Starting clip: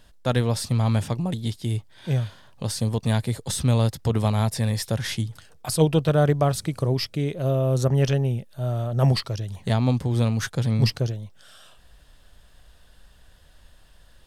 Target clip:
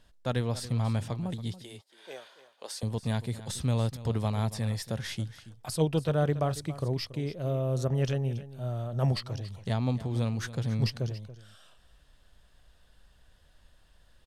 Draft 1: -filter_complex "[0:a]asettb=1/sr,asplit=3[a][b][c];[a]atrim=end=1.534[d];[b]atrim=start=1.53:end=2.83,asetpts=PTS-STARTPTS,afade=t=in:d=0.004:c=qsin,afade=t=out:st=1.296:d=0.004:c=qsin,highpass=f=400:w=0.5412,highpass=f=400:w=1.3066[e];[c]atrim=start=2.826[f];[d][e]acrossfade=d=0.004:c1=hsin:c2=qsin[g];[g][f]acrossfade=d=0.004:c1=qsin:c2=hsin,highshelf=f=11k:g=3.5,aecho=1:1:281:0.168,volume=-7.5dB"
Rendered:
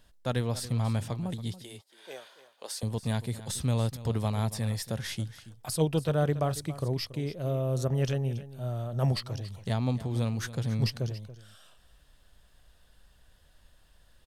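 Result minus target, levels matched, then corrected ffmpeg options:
8000 Hz band +3.0 dB
-filter_complex "[0:a]asettb=1/sr,asplit=3[a][b][c];[a]atrim=end=1.534[d];[b]atrim=start=1.53:end=2.83,asetpts=PTS-STARTPTS,afade=t=in:d=0.004:c=qsin,afade=t=out:st=1.296:d=0.004:c=qsin,highpass=f=400:w=0.5412,highpass=f=400:w=1.3066[e];[c]atrim=start=2.826[f];[d][e]acrossfade=d=0.004:c1=hsin:c2=qsin[g];[g][f]acrossfade=d=0.004:c1=qsin:c2=hsin,highshelf=f=11k:g=-6.5,aecho=1:1:281:0.168,volume=-7.5dB"

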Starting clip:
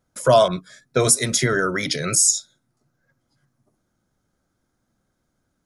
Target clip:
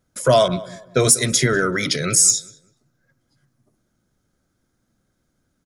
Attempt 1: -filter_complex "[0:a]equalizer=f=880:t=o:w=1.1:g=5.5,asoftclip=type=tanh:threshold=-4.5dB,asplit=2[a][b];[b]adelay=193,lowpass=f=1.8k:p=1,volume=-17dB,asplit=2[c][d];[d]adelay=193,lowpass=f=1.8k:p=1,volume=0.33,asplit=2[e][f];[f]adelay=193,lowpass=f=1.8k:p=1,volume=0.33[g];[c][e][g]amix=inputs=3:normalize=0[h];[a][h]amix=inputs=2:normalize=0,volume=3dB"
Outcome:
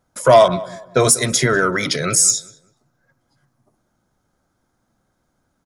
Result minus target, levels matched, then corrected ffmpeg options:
1000 Hz band +4.5 dB
-filter_complex "[0:a]equalizer=f=880:t=o:w=1.1:g=-5,asoftclip=type=tanh:threshold=-4.5dB,asplit=2[a][b];[b]adelay=193,lowpass=f=1.8k:p=1,volume=-17dB,asplit=2[c][d];[d]adelay=193,lowpass=f=1.8k:p=1,volume=0.33,asplit=2[e][f];[f]adelay=193,lowpass=f=1.8k:p=1,volume=0.33[g];[c][e][g]amix=inputs=3:normalize=0[h];[a][h]amix=inputs=2:normalize=0,volume=3dB"

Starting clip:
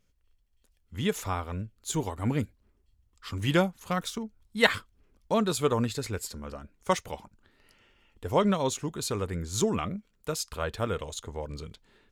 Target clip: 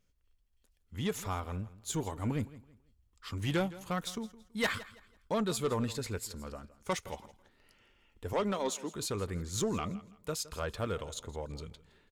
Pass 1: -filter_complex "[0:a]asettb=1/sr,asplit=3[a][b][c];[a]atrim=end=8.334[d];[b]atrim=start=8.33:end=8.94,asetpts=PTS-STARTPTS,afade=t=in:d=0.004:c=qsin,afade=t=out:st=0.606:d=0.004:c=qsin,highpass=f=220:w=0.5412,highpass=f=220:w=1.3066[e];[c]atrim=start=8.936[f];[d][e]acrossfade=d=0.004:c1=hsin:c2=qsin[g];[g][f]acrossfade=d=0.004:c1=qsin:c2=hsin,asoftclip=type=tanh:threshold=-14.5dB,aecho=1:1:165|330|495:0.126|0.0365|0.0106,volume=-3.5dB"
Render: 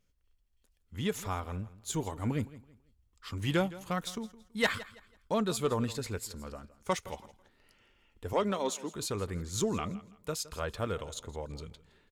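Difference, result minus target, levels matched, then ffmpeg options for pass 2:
soft clip: distortion -6 dB
-filter_complex "[0:a]asettb=1/sr,asplit=3[a][b][c];[a]atrim=end=8.334[d];[b]atrim=start=8.33:end=8.94,asetpts=PTS-STARTPTS,afade=t=in:d=0.004:c=qsin,afade=t=out:st=0.606:d=0.004:c=qsin,highpass=f=220:w=0.5412,highpass=f=220:w=1.3066[e];[c]atrim=start=8.936[f];[d][e]acrossfade=d=0.004:c1=hsin:c2=qsin[g];[g][f]acrossfade=d=0.004:c1=qsin:c2=hsin,asoftclip=type=tanh:threshold=-20.5dB,aecho=1:1:165|330|495:0.126|0.0365|0.0106,volume=-3.5dB"

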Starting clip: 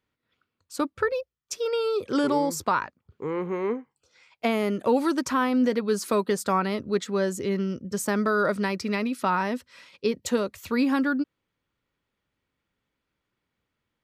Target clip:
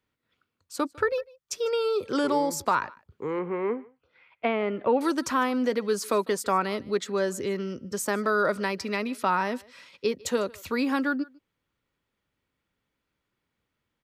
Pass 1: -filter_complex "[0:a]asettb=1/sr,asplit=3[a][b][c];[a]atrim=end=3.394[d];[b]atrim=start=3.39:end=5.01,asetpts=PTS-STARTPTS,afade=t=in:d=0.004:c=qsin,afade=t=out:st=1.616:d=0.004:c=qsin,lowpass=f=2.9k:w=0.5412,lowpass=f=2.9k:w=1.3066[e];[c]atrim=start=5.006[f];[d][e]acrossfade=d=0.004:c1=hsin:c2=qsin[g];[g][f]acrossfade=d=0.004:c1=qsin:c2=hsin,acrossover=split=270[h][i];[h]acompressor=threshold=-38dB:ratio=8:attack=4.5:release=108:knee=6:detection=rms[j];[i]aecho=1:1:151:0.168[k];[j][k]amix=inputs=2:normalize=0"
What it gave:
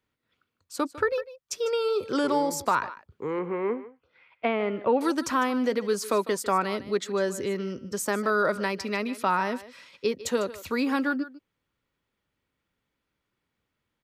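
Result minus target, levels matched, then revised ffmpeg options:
echo-to-direct +7 dB
-filter_complex "[0:a]asettb=1/sr,asplit=3[a][b][c];[a]atrim=end=3.394[d];[b]atrim=start=3.39:end=5.01,asetpts=PTS-STARTPTS,afade=t=in:d=0.004:c=qsin,afade=t=out:st=1.616:d=0.004:c=qsin,lowpass=f=2.9k:w=0.5412,lowpass=f=2.9k:w=1.3066[e];[c]atrim=start=5.006[f];[d][e]acrossfade=d=0.004:c1=hsin:c2=qsin[g];[g][f]acrossfade=d=0.004:c1=qsin:c2=hsin,acrossover=split=270[h][i];[h]acompressor=threshold=-38dB:ratio=8:attack=4.5:release=108:knee=6:detection=rms[j];[i]aecho=1:1:151:0.0668[k];[j][k]amix=inputs=2:normalize=0"

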